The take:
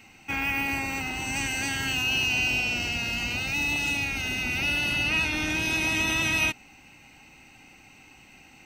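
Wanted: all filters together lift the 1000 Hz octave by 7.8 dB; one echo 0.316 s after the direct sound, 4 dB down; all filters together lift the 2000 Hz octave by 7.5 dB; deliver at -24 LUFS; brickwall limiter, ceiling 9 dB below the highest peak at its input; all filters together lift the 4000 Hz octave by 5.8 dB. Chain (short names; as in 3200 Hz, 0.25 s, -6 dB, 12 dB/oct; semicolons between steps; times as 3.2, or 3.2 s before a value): bell 1000 Hz +8 dB; bell 2000 Hz +7.5 dB; bell 4000 Hz +3.5 dB; limiter -16 dBFS; echo 0.316 s -4 dB; gain -3.5 dB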